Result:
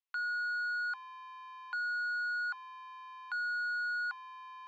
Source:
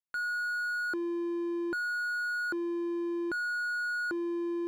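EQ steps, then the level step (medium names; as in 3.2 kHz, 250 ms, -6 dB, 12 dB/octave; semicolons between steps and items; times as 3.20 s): rippled Chebyshev high-pass 770 Hz, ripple 6 dB; Bessel low-pass 4.2 kHz, order 4; +4.0 dB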